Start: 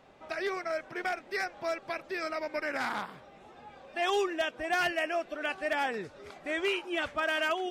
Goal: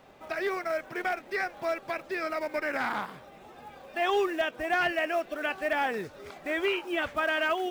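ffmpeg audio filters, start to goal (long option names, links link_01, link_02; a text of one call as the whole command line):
ffmpeg -i in.wav -filter_complex "[0:a]aeval=exprs='0.0944*(cos(1*acos(clip(val(0)/0.0944,-1,1)))-cos(1*PI/2))+0.00119*(cos(5*acos(clip(val(0)/0.0944,-1,1)))-cos(5*PI/2))':channel_layout=same,acrusher=bits=5:mode=log:mix=0:aa=0.000001,acrossover=split=3300[link_01][link_02];[link_02]acompressor=threshold=-51dB:ratio=4:attack=1:release=60[link_03];[link_01][link_03]amix=inputs=2:normalize=0,volume=2.5dB" out.wav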